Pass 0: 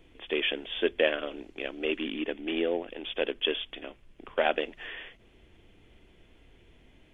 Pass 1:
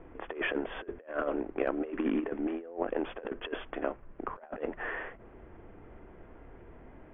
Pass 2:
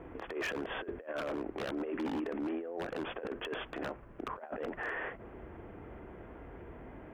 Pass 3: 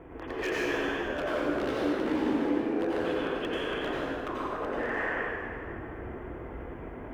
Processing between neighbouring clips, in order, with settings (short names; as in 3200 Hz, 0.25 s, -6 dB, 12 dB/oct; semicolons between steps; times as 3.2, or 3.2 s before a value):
LPF 1400 Hz 24 dB/oct; low shelf 490 Hz -9 dB; negative-ratio compressor -41 dBFS, ratio -0.5; gain +8.5 dB
wavefolder -27 dBFS; HPF 44 Hz; limiter -33.5 dBFS, peak gain reduction 8 dB; gain +4 dB
plate-style reverb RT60 2.5 s, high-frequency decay 0.75×, pre-delay 75 ms, DRR -7 dB